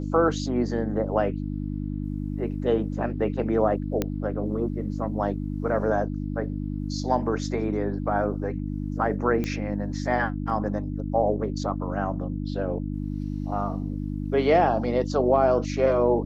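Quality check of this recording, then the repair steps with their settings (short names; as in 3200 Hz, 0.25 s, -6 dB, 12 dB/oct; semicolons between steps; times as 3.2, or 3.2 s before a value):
hum 50 Hz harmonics 6 -30 dBFS
4.02 pop -11 dBFS
9.44 pop -16 dBFS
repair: de-click; de-hum 50 Hz, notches 6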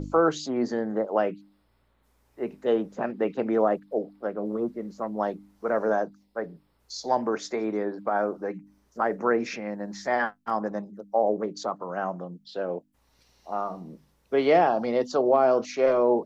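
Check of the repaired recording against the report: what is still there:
9.44 pop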